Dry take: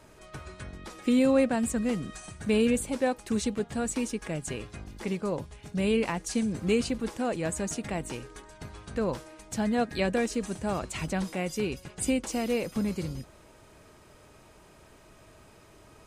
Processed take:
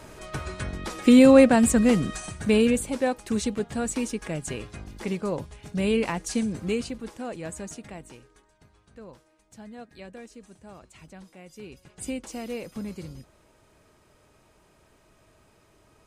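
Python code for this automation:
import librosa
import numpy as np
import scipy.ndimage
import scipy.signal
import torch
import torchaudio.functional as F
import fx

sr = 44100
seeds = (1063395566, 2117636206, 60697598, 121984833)

y = fx.gain(x, sr, db=fx.line((2.04, 9.0), (2.82, 2.0), (6.4, 2.0), (6.99, -5.0), (7.61, -5.0), (8.7, -16.0), (11.42, -16.0), (12.05, -5.5)))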